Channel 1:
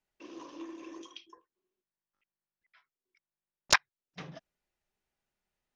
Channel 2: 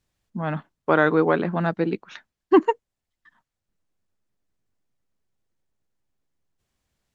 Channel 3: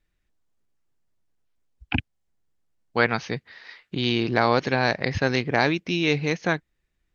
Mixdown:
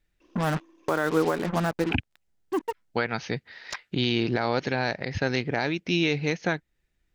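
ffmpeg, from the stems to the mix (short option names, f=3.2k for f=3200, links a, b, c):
-filter_complex "[0:a]volume=-13dB[a];[1:a]asubboost=boost=4:cutoff=93,acrusher=bits=4:mix=0:aa=0.5,volume=2dB[b];[2:a]bandreject=f=1.1k:w=7.7,volume=1dB,asplit=2[c][d];[d]apad=whole_len=315239[e];[b][e]sidechaincompress=threshold=-42dB:ratio=4:attack=12:release=940[f];[a][f][c]amix=inputs=3:normalize=0,alimiter=limit=-13dB:level=0:latency=1:release=299"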